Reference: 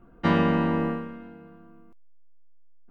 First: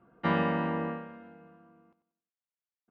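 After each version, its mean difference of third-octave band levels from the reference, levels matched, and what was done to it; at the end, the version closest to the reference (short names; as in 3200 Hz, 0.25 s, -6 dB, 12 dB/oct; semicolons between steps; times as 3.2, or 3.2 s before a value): 2.0 dB: BPF 140–3100 Hz; bell 280 Hz -5.5 dB 0.92 oct; feedback echo 93 ms, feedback 38%, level -13 dB; gain -3 dB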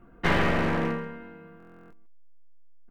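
4.5 dB: one-sided fold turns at -24.5 dBFS; bell 2000 Hz +5.5 dB 0.77 oct; echo 0.135 s -14 dB; stuck buffer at 1.58, samples 1024, times 13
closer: first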